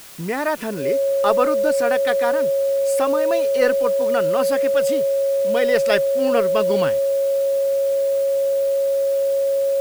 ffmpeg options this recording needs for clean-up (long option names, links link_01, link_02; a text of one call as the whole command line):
ffmpeg -i in.wav -af "bandreject=frequency=550:width=30,afwtdn=0.0089" out.wav